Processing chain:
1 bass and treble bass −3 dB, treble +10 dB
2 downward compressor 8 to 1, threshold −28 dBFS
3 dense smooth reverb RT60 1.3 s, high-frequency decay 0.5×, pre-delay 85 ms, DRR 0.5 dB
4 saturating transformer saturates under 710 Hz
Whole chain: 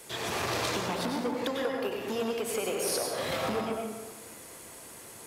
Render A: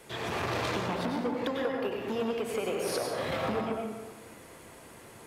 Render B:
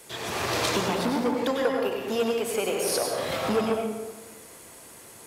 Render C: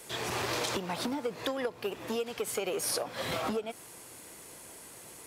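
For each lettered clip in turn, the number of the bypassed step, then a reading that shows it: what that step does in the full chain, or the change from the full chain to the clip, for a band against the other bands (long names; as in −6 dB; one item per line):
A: 1, 8 kHz band −8.0 dB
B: 2, average gain reduction 2.5 dB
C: 3, change in integrated loudness −2.0 LU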